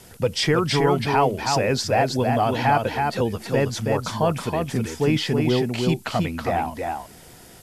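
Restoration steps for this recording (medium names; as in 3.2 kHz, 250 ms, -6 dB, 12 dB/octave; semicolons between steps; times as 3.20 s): noise reduction 23 dB, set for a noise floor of -45 dBFS; inverse comb 322 ms -4 dB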